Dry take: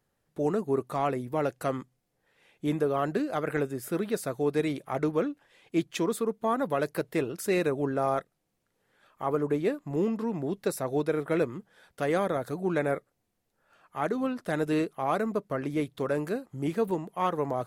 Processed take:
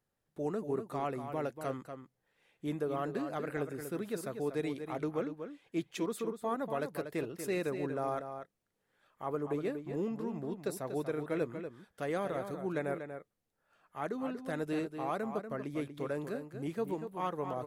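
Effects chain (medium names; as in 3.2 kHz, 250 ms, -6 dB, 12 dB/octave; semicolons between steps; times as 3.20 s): echo from a far wall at 41 m, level -8 dB; trim -8 dB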